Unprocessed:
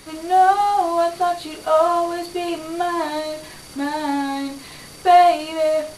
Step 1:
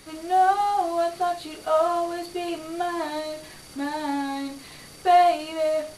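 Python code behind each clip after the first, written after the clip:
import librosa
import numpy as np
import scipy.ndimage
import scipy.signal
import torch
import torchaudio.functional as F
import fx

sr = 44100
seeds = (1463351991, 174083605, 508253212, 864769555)

y = fx.notch(x, sr, hz=1000.0, q=18.0)
y = y * librosa.db_to_amplitude(-5.0)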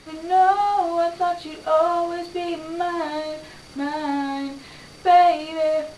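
y = fx.air_absorb(x, sr, metres=68.0)
y = y * librosa.db_to_amplitude(3.0)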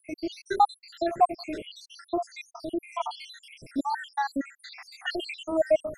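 y = fx.spec_dropout(x, sr, seeds[0], share_pct=83)
y = y * librosa.db_to_amplitude(3.5)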